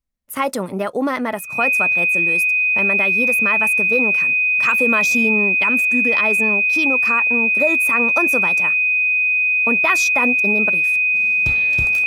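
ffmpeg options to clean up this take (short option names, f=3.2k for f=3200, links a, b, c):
-af "bandreject=f=2.5k:w=30"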